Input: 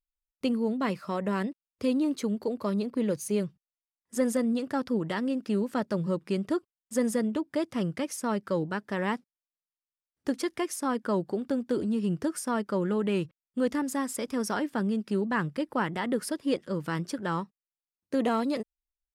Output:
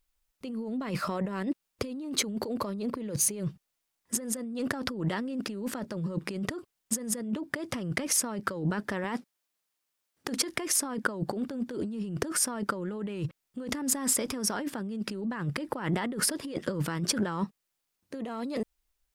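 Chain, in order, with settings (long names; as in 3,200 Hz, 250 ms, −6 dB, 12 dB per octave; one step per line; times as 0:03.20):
0:09.04–0:10.37: high-pass filter 190 Hz 6 dB per octave
compressor whose output falls as the input rises −38 dBFS, ratio −1
level +5.5 dB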